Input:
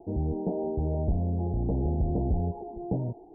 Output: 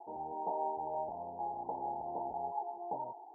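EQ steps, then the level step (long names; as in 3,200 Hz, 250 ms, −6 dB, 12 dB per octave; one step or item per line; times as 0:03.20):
high-pass with resonance 900 Hz, resonance Q 9.4
spectral tilt −2.5 dB per octave
−5.0 dB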